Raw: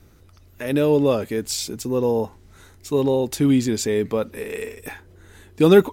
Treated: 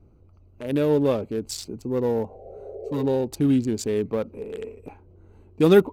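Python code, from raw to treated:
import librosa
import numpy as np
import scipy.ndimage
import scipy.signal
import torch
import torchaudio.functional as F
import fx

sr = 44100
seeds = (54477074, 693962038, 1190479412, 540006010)

y = fx.wiener(x, sr, points=25)
y = fx.spec_repair(y, sr, seeds[0], start_s=2.32, length_s=0.69, low_hz=340.0, high_hz=780.0, source='both')
y = F.gain(torch.from_numpy(y), -2.5).numpy()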